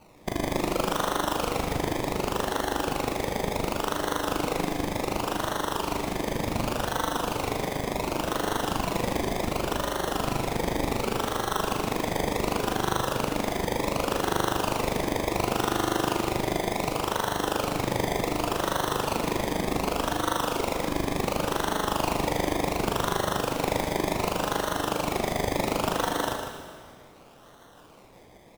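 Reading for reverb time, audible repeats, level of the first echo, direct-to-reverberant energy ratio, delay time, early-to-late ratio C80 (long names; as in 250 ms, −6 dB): 2.0 s, 1, −8.5 dB, 2.0 dB, 151 ms, 4.0 dB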